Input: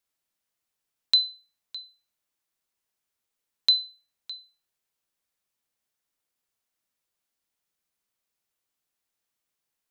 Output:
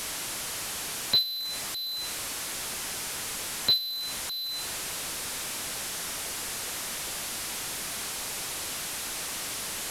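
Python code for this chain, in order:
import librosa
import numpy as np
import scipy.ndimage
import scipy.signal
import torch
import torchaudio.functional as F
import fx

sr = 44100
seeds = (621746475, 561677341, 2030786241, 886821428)

y = fx.delta_mod(x, sr, bps=64000, step_db=-27.0)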